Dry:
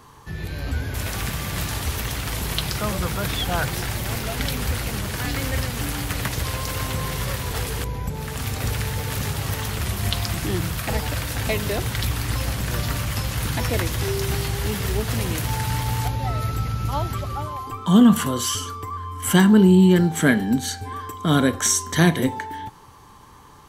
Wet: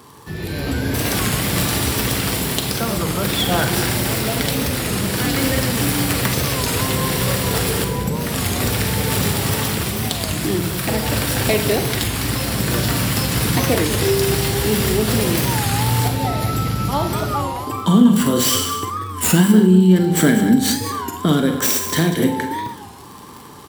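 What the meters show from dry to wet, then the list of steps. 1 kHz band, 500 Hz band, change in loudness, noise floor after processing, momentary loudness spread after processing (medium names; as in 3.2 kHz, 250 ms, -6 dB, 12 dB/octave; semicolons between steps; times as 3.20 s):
+5.0 dB, +6.0 dB, +5.0 dB, -35 dBFS, 8 LU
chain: tracing distortion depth 0.11 ms; compression 10:1, threshold -20 dBFS, peak gain reduction 11.5 dB; crackle 78 per s -37 dBFS; high-pass 65 Hz; treble shelf 2.8 kHz +8 dB; band-stop 6.4 kHz, Q 8.9; level rider gain up to 4 dB; peaking EQ 310 Hz +8.5 dB 2.2 oct; delay 193 ms -11 dB; Schroeder reverb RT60 0.47 s, combs from 33 ms, DRR 6.5 dB; warped record 33 1/3 rpm, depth 160 cents; trim -1 dB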